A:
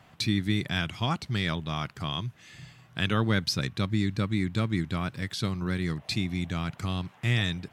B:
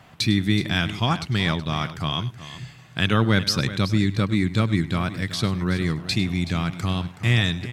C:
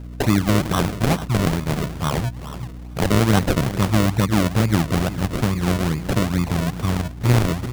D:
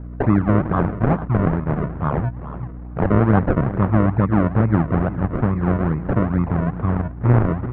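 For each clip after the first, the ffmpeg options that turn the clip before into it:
ffmpeg -i in.wav -af "aecho=1:1:101|374:0.133|0.2,volume=6dB" out.wav
ffmpeg -i in.wav -af "acrusher=samples=37:mix=1:aa=0.000001:lfo=1:lforange=37:lforate=2.3,aeval=exprs='val(0)+0.0158*(sin(2*PI*60*n/s)+sin(2*PI*2*60*n/s)/2+sin(2*PI*3*60*n/s)/3+sin(2*PI*4*60*n/s)/4+sin(2*PI*5*60*n/s)/5)':channel_layout=same,volume=3dB" out.wav
ffmpeg -i in.wav -af "lowpass=frequency=1600:width=0.5412,lowpass=frequency=1600:width=1.3066,volume=1.5dB" out.wav

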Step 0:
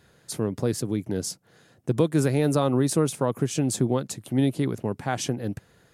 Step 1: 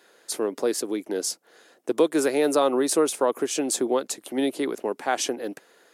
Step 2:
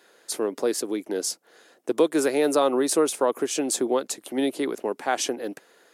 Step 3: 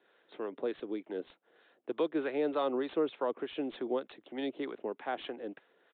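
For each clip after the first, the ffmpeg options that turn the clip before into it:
ffmpeg -i in.wav -af "highpass=frequency=320:width=0.5412,highpass=frequency=320:width=1.3066,volume=4dB" out.wav
ffmpeg -i in.wav -af anull out.wav
ffmpeg -i in.wav -filter_complex "[0:a]acrossover=split=660[link_01][link_02];[link_01]aeval=exprs='val(0)*(1-0.5/2+0.5/2*cos(2*PI*3.3*n/s))':channel_layout=same[link_03];[link_02]aeval=exprs='val(0)*(1-0.5/2-0.5/2*cos(2*PI*3.3*n/s))':channel_layout=same[link_04];[link_03][link_04]amix=inputs=2:normalize=0,acrossover=split=140|1100[link_05][link_06][link_07];[link_07]aeval=exprs='0.0668*(abs(mod(val(0)/0.0668+3,4)-2)-1)':channel_layout=same[link_08];[link_05][link_06][link_08]amix=inputs=3:normalize=0,aresample=8000,aresample=44100,volume=-8dB" out.wav

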